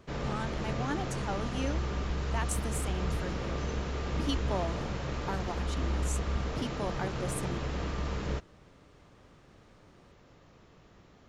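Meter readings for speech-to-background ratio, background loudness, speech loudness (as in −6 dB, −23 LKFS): −4.5 dB, −35.0 LKFS, −39.5 LKFS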